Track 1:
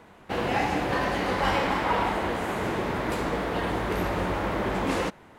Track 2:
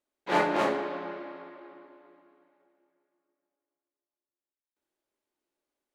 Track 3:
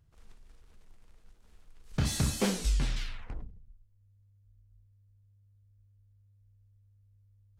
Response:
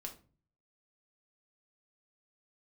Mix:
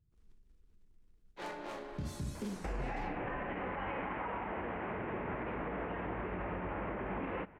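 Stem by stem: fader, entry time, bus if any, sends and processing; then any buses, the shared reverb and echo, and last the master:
−0.5 dB, 2.35 s, send −11 dB, Butterworth low-pass 2,700 Hz 48 dB per octave; downward compressor 2.5 to 1, threshold −41 dBFS, peak gain reduction 13.5 dB
−17.0 dB, 1.10 s, no send, bass and treble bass −1 dB, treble +4 dB; downward compressor 2 to 1, threshold −29 dBFS, peak gain reduction 5.5 dB; harmonic generator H 5 −9 dB, 7 −13 dB, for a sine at −17.5 dBFS
−19.0 dB, 0.00 s, send −6 dB, low shelf with overshoot 460 Hz +8.5 dB, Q 1.5; tape wow and flutter 53 cents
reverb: on, RT60 0.40 s, pre-delay 5 ms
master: brickwall limiter −30 dBFS, peak gain reduction 7.5 dB

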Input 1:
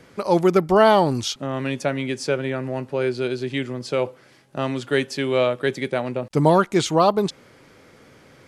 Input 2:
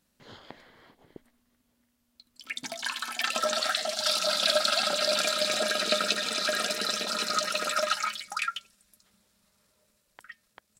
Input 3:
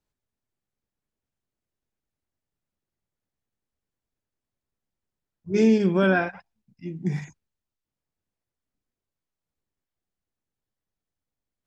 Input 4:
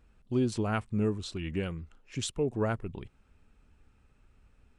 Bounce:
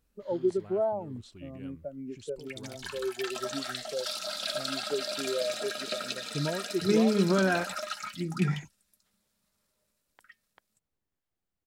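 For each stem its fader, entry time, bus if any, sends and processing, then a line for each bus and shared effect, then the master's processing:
+0.5 dB, 0.00 s, no send, low-pass filter 2,200 Hz; downward compressor 2.5 to 1, threshold −34 dBFS, peak gain reduction 15.5 dB; every bin expanded away from the loudest bin 2.5 to 1
−9.0 dB, 0.00 s, no send, no processing
+0.5 dB, 1.35 s, no send, high-shelf EQ 4,700 Hz −6.5 dB; downward compressor, threshold −21 dBFS, peak gain reduction 7 dB
−13.0 dB, 0.00 s, no send, brickwall limiter −28 dBFS, peak gain reduction 11 dB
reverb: not used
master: high-shelf EQ 12,000 Hz +5.5 dB

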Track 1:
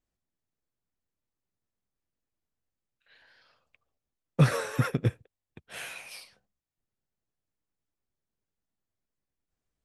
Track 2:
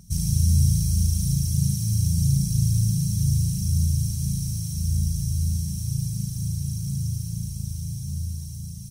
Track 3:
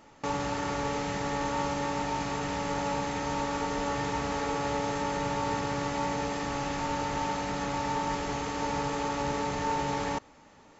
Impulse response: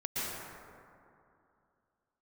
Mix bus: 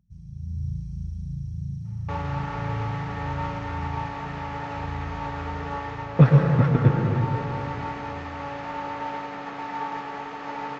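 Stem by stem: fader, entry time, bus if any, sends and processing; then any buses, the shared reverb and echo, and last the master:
−0.5 dB, 1.80 s, send −4.5 dB, dead-zone distortion −36 dBFS
−20.0 dB, 0.00 s, send −13 dB, no processing
0.0 dB, 1.85 s, send −10.5 dB, high-pass filter 1,400 Hz 6 dB per octave; expander for the loud parts 1.5 to 1, over −51 dBFS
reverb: on, RT60 2.6 s, pre-delay 108 ms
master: automatic gain control gain up to 9 dB; head-to-tape spacing loss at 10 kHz 40 dB

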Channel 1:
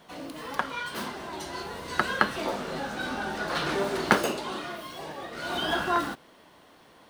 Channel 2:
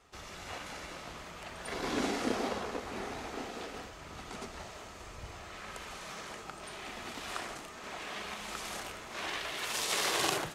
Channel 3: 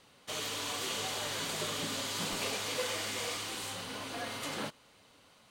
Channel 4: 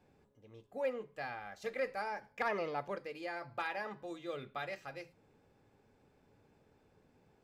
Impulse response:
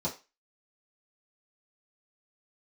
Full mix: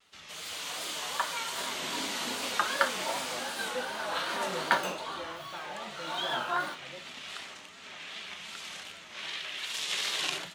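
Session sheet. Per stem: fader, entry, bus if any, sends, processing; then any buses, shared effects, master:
−4.5 dB, 0.60 s, send −4.5 dB, Bessel high-pass filter 900 Hz, order 2
−8.5 dB, 0.00 s, send −14.5 dB, meter weighting curve D
−6.0 dB, 0.00 s, no send, high-pass filter 1,000 Hz 6 dB per octave; automatic gain control gain up to 6 dB; pitch vibrato 0.39 Hz 59 cents
−7.5 dB, 1.95 s, send −5.5 dB, no processing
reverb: on, RT60 0.30 s, pre-delay 3 ms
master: pitch vibrato 2.6 Hz 91 cents

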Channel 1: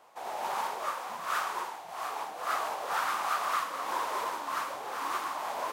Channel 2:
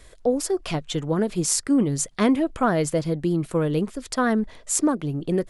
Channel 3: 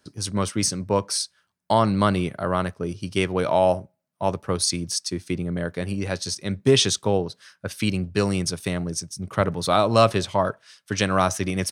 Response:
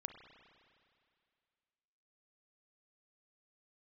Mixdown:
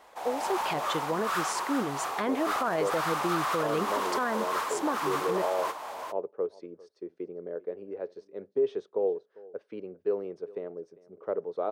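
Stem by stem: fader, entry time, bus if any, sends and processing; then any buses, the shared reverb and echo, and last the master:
+3.0 dB, 0.00 s, no send, echo send −6.5 dB, soft clipping −26 dBFS, distortion −17 dB
−5.5 dB, 0.00 s, no send, no echo send, automatic gain control gain up to 8.5 dB; resonant band-pass 1,200 Hz, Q 0.63
+0.5 dB, 1.90 s, no send, echo send −22 dB, four-pole ladder band-pass 480 Hz, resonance 65%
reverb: not used
echo: single-tap delay 399 ms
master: brickwall limiter −19 dBFS, peak gain reduction 10 dB

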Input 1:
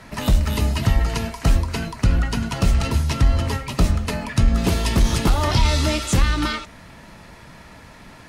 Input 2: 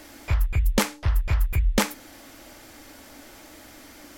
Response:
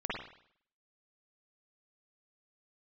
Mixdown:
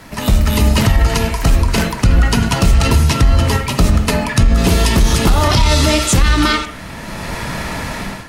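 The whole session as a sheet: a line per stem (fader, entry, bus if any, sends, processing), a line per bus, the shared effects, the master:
+2.5 dB, 0.00 s, send −13 dB, high-shelf EQ 7,900 Hz +4.5 dB; automatic gain control gain up to 16.5 dB
−4.5 dB, 0.00 s, send −3 dB, no processing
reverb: on, RT60 0.60 s, pre-delay 46 ms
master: brickwall limiter −3 dBFS, peak gain reduction 7 dB

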